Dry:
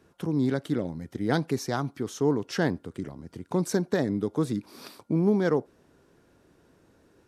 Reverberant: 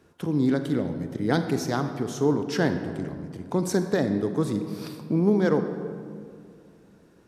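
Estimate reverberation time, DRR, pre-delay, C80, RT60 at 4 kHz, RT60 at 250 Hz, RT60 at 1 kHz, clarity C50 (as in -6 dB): 2.2 s, 7.5 dB, 33 ms, 9.5 dB, 1.2 s, 2.7 s, 2.0 s, 8.5 dB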